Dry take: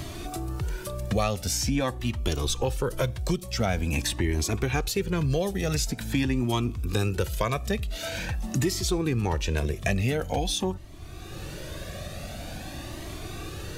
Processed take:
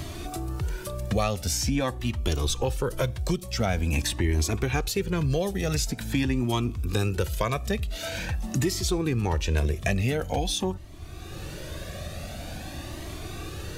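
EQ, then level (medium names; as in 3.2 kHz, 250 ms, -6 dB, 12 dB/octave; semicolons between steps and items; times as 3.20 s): peaking EQ 77 Hz +4.5 dB 0.24 oct; 0.0 dB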